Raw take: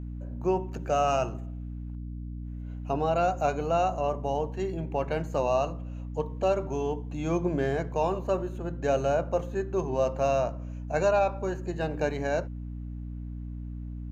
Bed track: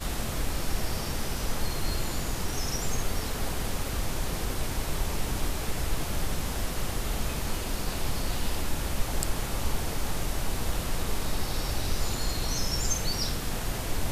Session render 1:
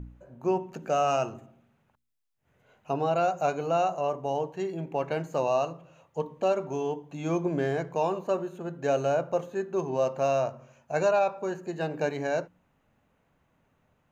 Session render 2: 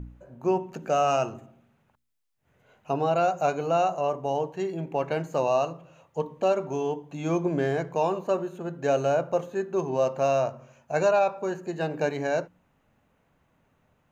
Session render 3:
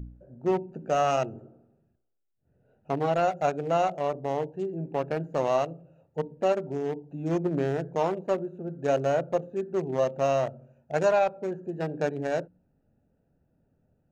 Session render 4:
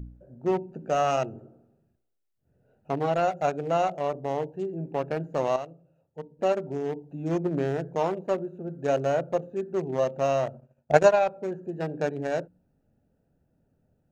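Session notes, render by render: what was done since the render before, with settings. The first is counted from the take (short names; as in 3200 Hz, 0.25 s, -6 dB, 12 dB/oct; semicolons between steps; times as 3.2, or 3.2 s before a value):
de-hum 60 Hz, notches 5
gain +2 dB
Wiener smoothing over 41 samples; 1.37–2.31 spectral repair 280–1600 Hz both
5.56–6.39 gain -8.5 dB; 10.54–11.16 transient shaper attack +11 dB, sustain -12 dB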